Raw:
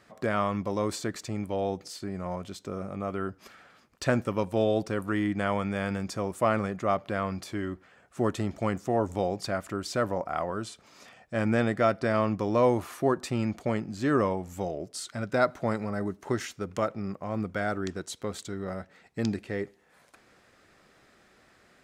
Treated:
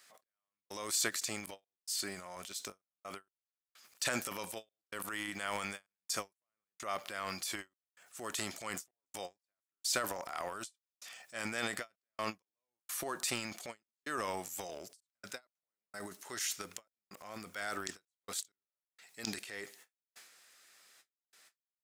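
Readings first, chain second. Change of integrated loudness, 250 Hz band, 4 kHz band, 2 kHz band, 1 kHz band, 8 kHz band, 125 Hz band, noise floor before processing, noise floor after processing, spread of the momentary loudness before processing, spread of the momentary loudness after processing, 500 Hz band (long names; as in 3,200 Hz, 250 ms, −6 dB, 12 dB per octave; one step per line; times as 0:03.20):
−9.5 dB, −18.5 dB, +1.0 dB, −5.5 dB, −11.5 dB, +5.0 dB, −22.0 dB, −61 dBFS, below −85 dBFS, 10 LU, 17 LU, −17.0 dB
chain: first difference
transient designer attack −3 dB, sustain +11 dB
gate pattern "x..xxxx.xxxx." 64 BPM −60 dB
every ending faded ahead of time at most 450 dB per second
level +7.5 dB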